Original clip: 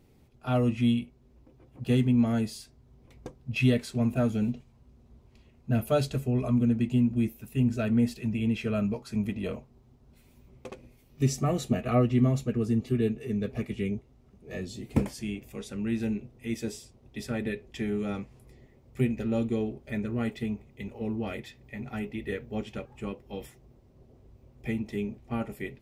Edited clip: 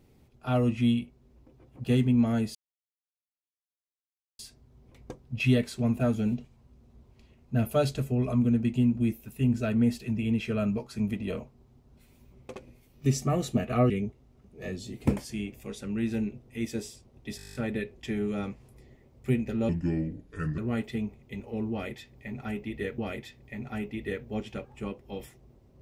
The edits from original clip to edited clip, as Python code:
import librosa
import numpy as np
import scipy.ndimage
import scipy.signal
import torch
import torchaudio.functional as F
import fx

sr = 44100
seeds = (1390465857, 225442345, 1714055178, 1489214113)

y = fx.edit(x, sr, fx.insert_silence(at_s=2.55, length_s=1.84),
    fx.cut(start_s=12.06, length_s=1.73),
    fx.stutter(start_s=17.26, slice_s=0.02, count=10),
    fx.speed_span(start_s=19.4, length_s=0.66, speed=0.74),
    fx.repeat(start_s=21.19, length_s=1.27, count=2), tone=tone)